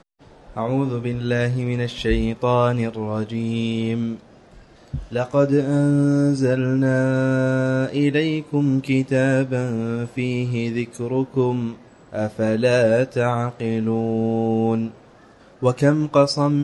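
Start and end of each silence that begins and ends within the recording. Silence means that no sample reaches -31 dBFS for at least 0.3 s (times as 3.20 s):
4.17–4.94 s
11.75–12.13 s
14.91–15.62 s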